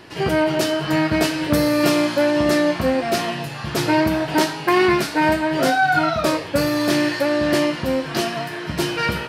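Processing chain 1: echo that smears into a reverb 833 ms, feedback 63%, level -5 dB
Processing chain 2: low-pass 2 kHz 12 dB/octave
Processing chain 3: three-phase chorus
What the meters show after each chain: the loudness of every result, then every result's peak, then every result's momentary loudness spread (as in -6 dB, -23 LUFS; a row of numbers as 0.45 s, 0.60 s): -17.5 LUFS, -20.0 LUFS, -23.0 LUFS; -3.5 dBFS, -5.5 dBFS, -7.5 dBFS; 4 LU, 7 LU, 6 LU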